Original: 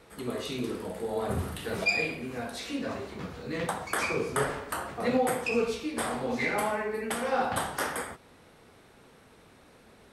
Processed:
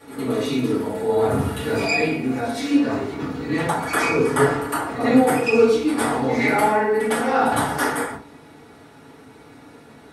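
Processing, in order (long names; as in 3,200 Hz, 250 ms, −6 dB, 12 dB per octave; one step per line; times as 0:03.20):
high-pass filter 130 Hz 6 dB per octave
backwards echo 108 ms −12.5 dB
convolution reverb RT60 0.35 s, pre-delay 4 ms, DRR −8.5 dB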